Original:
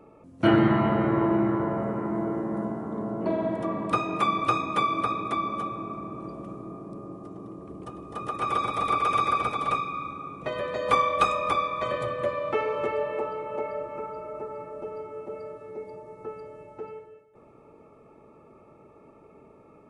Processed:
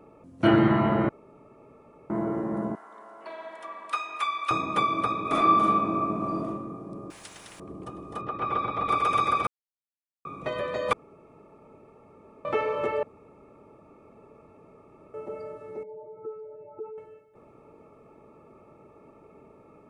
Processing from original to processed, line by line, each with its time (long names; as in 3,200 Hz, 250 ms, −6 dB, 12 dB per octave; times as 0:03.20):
0:01.09–0:02.10: fill with room tone
0:02.75–0:04.51: high-pass filter 1,300 Hz
0:05.22–0:06.45: thrown reverb, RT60 0.91 s, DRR −6.5 dB
0:07.10–0:07.60: every bin compressed towards the loudest bin 10 to 1
0:08.21–0:08.89: high-frequency loss of the air 280 metres
0:09.47–0:10.25: silence
0:10.93–0:12.45: fill with room tone
0:13.03–0:15.14: fill with room tone
0:15.83–0:16.98: expanding power law on the bin magnitudes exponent 2